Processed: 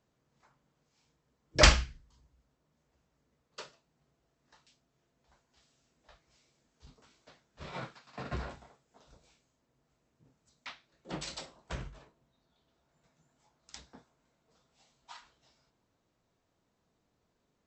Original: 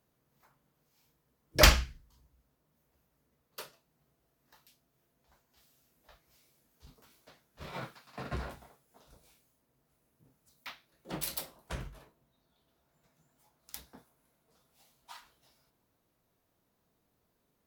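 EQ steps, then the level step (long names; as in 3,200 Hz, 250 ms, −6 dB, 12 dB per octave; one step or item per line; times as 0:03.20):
linear-phase brick-wall low-pass 8,100 Hz
0.0 dB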